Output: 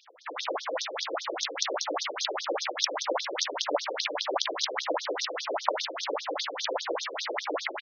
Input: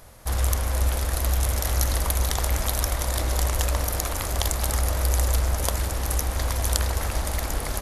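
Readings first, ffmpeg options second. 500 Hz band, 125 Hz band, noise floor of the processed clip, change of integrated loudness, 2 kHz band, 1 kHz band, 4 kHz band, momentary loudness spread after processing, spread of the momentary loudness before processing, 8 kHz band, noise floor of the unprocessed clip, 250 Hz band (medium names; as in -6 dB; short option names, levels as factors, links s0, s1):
+1.5 dB, under -40 dB, -41 dBFS, -5.5 dB, 0.0 dB, 0.0 dB, +2.0 dB, 4 LU, 3 LU, -9.0 dB, -30 dBFS, -6.0 dB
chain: -filter_complex "[0:a]afftfilt=real='re*lt(hypot(re,im),0.316)':imag='im*lt(hypot(re,im),0.316)':win_size=1024:overlap=0.75,lowshelf=f=300:g=-5.5,asplit=2[s0][s1];[s1]adynamicsmooth=sensitivity=3.5:basefreq=7800,volume=0.944[s2];[s0][s2]amix=inputs=2:normalize=0,acrossover=split=1500[s3][s4];[s3]aeval=exprs='val(0)*(1-0.7/2+0.7/2*cos(2*PI*1.6*n/s))':c=same[s5];[s4]aeval=exprs='val(0)*(1-0.7/2-0.7/2*cos(2*PI*1.6*n/s))':c=same[s6];[s5][s6]amix=inputs=2:normalize=0,acrusher=bits=7:dc=4:mix=0:aa=0.000001,aecho=1:1:404:0.211,afftfilt=real='re*between(b*sr/1024,380*pow(4800/380,0.5+0.5*sin(2*PI*5*pts/sr))/1.41,380*pow(4800/380,0.5+0.5*sin(2*PI*5*pts/sr))*1.41)':imag='im*between(b*sr/1024,380*pow(4800/380,0.5+0.5*sin(2*PI*5*pts/sr))/1.41,380*pow(4800/380,0.5+0.5*sin(2*PI*5*pts/sr))*1.41)':win_size=1024:overlap=0.75,volume=2.11"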